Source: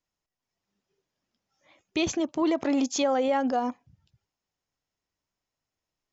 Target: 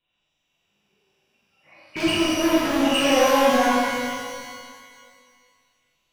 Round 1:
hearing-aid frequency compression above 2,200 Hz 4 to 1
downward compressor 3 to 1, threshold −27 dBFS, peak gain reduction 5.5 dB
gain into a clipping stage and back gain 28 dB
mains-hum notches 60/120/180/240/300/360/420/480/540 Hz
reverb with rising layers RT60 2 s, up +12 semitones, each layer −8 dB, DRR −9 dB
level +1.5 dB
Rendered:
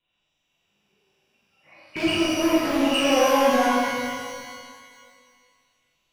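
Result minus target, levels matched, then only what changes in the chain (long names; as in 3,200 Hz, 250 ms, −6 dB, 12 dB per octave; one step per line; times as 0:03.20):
downward compressor: peak gain reduction +5.5 dB
remove: downward compressor 3 to 1, threshold −27 dBFS, peak gain reduction 5.5 dB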